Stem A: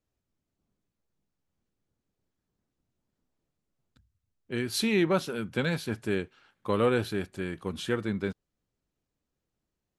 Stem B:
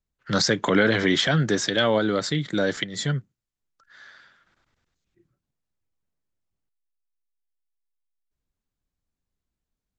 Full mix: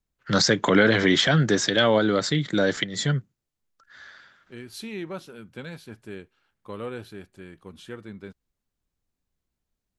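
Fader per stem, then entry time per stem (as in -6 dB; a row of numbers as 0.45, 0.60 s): -9.5, +1.5 dB; 0.00, 0.00 s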